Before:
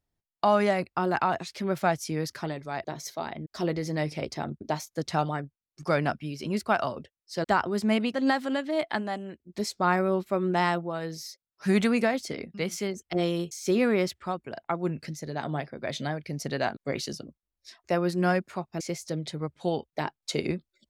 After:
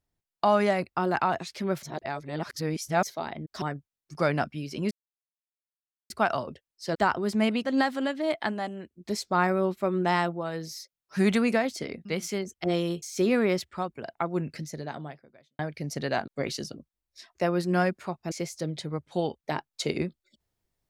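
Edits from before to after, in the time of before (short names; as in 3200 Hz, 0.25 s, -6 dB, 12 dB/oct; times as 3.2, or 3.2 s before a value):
1.83–3.03 reverse
3.62–5.3 cut
6.59 insert silence 1.19 s
15.23–16.08 fade out quadratic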